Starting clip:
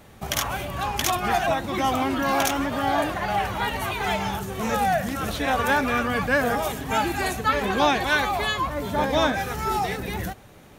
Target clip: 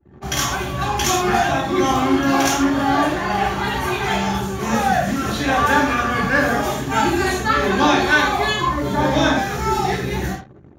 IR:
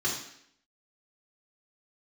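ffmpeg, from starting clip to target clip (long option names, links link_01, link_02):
-filter_complex "[1:a]atrim=start_sample=2205,atrim=end_sample=6615[link_01];[0:a][link_01]afir=irnorm=-1:irlink=0,anlmdn=1.58,volume=-3dB"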